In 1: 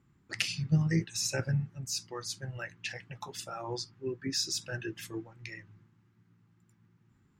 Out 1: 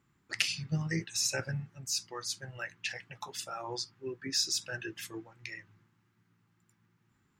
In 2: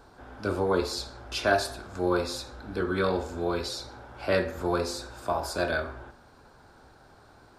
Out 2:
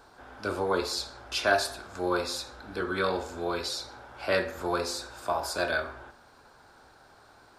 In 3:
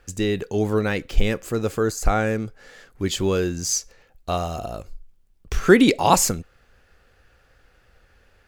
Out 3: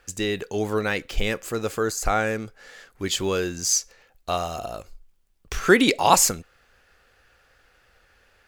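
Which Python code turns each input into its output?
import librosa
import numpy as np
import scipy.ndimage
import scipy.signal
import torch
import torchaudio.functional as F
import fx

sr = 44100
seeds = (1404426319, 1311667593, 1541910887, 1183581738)

y = fx.low_shelf(x, sr, hz=430.0, db=-9.5)
y = F.gain(torch.from_numpy(y), 2.0).numpy()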